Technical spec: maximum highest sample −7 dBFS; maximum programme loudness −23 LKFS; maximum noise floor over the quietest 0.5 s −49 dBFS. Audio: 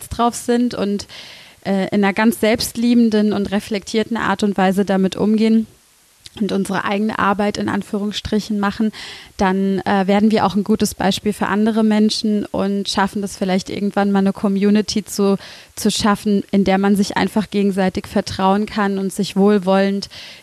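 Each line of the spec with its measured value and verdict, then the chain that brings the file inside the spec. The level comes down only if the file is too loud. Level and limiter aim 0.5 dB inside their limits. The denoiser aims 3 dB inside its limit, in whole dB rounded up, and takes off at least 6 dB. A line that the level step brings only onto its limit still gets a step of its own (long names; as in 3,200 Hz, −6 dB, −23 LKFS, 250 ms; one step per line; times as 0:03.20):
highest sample −4.5 dBFS: out of spec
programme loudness −17.5 LKFS: out of spec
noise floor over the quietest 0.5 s −53 dBFS: in spec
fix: level −6 dB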